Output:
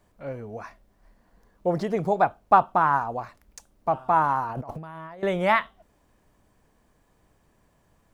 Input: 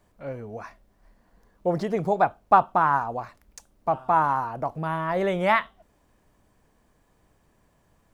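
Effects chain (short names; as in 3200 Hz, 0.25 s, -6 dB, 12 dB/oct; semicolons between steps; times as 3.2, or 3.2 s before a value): 4.49–5.23 negative-ratio compressor -38 dBFS, ratio -1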